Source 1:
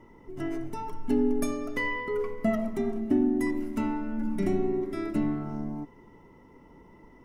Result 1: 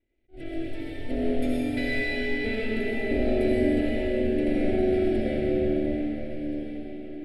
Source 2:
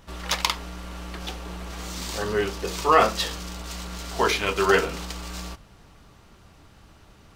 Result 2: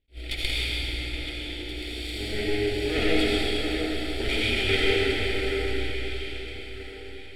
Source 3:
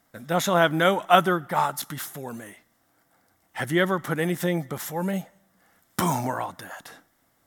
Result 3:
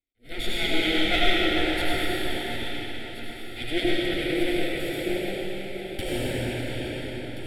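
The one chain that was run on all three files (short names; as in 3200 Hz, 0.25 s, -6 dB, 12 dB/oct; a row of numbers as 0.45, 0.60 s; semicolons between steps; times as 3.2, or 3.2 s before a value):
minimum comb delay 0.88 ms; gate with hold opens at -41 dBFS; LPF 7300 Hz 12 dB/oct; fixed phaser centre 2700 Hz, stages 4; in parallel at -7.5 dB: soft clip -24 dBFS; on the sum: fixed phaser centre 420 Hz, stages 4; on a send: echo with dull and thin repeats by turns 0.689 s, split 2000 Hz, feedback 51%, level -6 dB; on the sum: digital reverb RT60 3.8 s, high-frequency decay 0.95×, pre-delay 40 ms, DRR -7 dB; attack slew limiter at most 350 dB/s; match loudness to -27 LUFS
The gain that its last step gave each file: -1.0, -2.5, -0.5 dB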